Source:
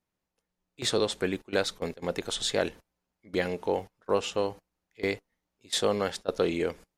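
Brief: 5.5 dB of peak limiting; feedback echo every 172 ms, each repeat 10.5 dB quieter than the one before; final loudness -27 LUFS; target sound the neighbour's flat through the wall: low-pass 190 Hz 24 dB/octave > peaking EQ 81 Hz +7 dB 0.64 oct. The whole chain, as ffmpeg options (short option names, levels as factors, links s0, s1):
-af "alimiter=limit=0.141:level=0:latency=1,lowpass=f=190:w=0.5412,lowpass=f=190:w=1.3066,equalizer=f=81:t=o:w=0.64:g=7,aecho=1:1:172|344|516:0.299|0.0896|0.0269,volume=7.5"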